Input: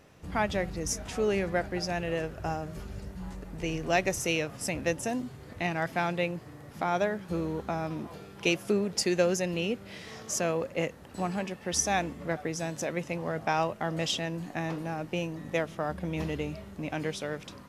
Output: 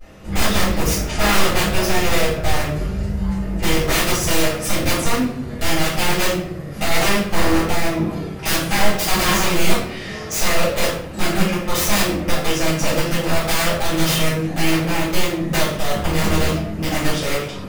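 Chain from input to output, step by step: 5.94–7.45 notch 900 Hz, Q 6.6; wrapped overs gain 25.5 dB; vibrato 0.68 Hz 76 cents; shoebox room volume 120 m³, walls mixed, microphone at 3.9 m

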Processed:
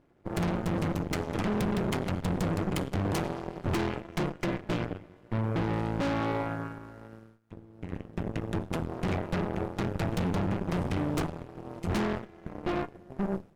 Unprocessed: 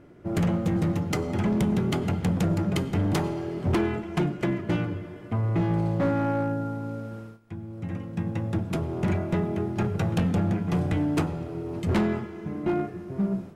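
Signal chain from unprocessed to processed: half-wave rectifier; added harmonics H 6 -27 dB, 7 -21 dB, 8 -25 dB, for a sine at -18 dBFS

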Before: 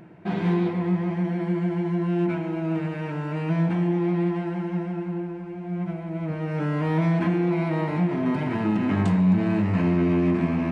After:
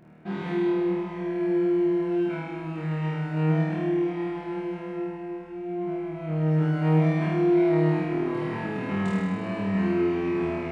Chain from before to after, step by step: flutter echo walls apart 4.4 m, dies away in 1.4 s; gain -8 dB

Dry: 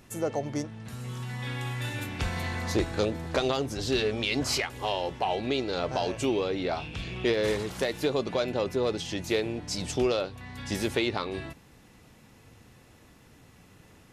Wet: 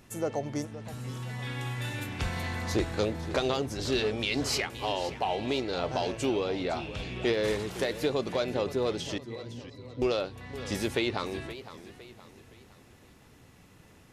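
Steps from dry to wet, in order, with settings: 9.18–10.02 octave resonator B, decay 0.11 s; warbling echo 0.515 s, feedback 42%, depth 180 cents, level -14 dB; gain -1.5 dB

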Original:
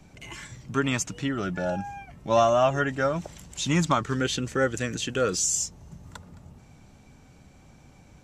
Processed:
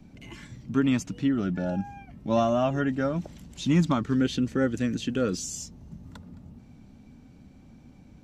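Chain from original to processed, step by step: EQ curve 150 Hz 0 dB, 240 Hz +8 dB, 390 Hz -2 dB, 1100 Hz -7 dB, 4500 Hz -5 dB, 7500 Hz -12 dB, 13000 Hz -6 dB

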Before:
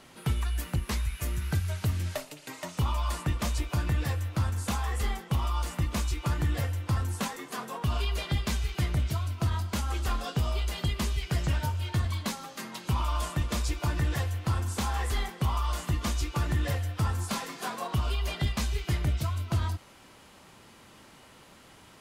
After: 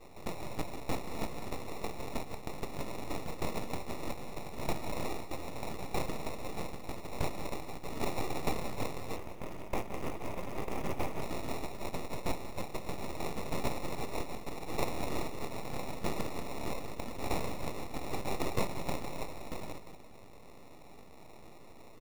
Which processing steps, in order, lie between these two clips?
reverse delay 0.15 s, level -8.5 dB; Chebyshev high-pass 1800 Hz, order 10; sample-and-hold 28×; full-wave rectifier; 9.16–11.22 polynomial smoothing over 25 samples; short-mantissa float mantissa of 2-bit; echo 0.187 s -14.5 dB; gain +8 dB

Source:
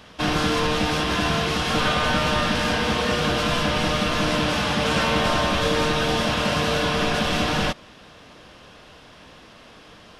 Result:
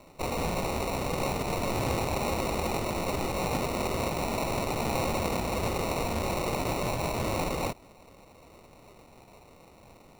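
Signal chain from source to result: elliptic high-pass 2200 Hz; sample-and-hold 27×

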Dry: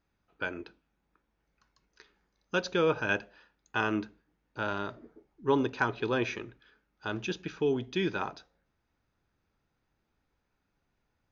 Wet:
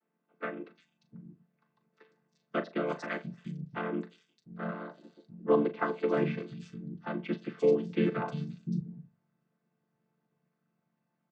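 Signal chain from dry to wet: chord vocoder minor triad, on D3; 2.56–5.03 harmonic-percussive split harmonic -8 dB; doubler 39 ms -12 dB; three bands offset in time mids, highs, lows 0.35/0.7 s, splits 190/4100 Hz; gain +3 dB

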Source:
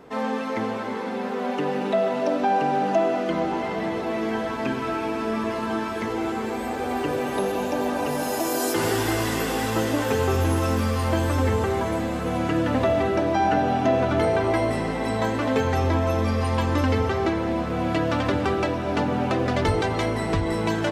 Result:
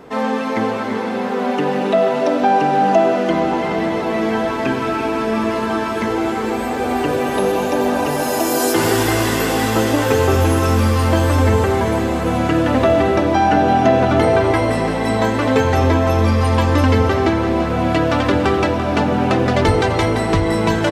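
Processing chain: echo 0.339 s -10 dB; gain +7 dB

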